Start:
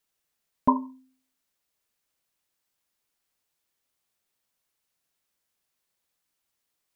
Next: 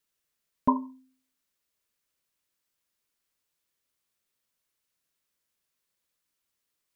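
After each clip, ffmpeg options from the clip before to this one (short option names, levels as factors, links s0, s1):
-af "equalizer=f=770:t=o:w=0.35:g=-6.5,volume=0.841"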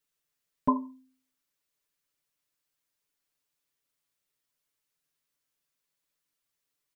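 -af "aecho=1:1:6.9:0.65,volume=0.668"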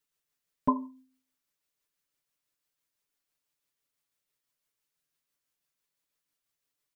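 -af "tremolo=f=6:d=0.3"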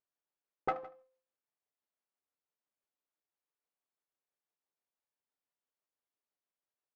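-af "aeval=exprs='abs(val(0))':c=same,bandpass=f=590:t=q:w=0.62:csg=0,aecho=1:1:160:0.1,volume=0.891"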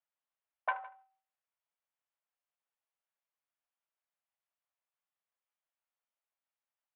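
-af "highpass=f=250:t=q:w=0.5412,highpass=f=250:t=q:w=1.307,lowpass=f=3100:t=q:w=0.5176,lowpass=f=3100:t=q:w=0.7071,lowpass=f=3100:t=q:w=1.932,afreqshift=250"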